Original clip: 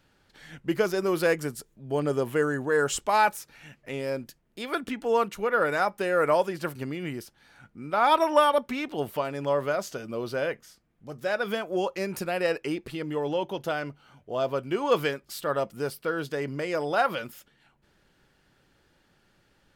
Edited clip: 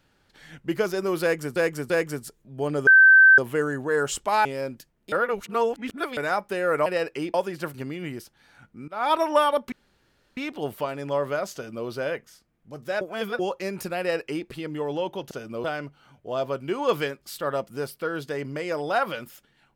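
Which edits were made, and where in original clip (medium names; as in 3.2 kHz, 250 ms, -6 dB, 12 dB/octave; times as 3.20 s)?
1.22–1.56 s: loop, 3 plays
2.19 s: add tone 1.55 kHz -9.5 dBFS 0.51 s
3.26–3.94 s: delete
4.61–5.66 s: reverse
7.89–8.16 s: fade in, from -19.5 dB
8.73 s: insert room tone 0.65 s
9.90–10.23 s: copy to 13.67 s
11.37–11.75 s: reverse
12.35–12.83 s: copy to 6.35 s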